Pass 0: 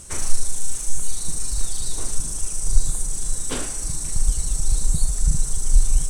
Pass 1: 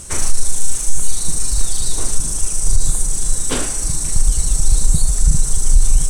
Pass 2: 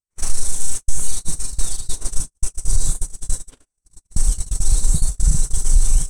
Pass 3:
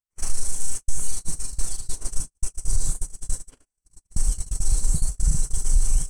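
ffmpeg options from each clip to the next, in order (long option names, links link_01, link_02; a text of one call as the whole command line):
ffmpeg -i in.wav -af "alimiter=level_in=8dB:limit=-1dB:release=50:level=0:latency=1,volume=-1dB" out.wav
ffmpeg -i in.wav -af "agate=range=-59dB:threshold=-11dB:ratio=16:detection=peak,volume=-2.5dB" out.wav
ffmpeg -i in.wav -af "bandreject=frequency=3700:width=5.4,volume=-5dB" out.wav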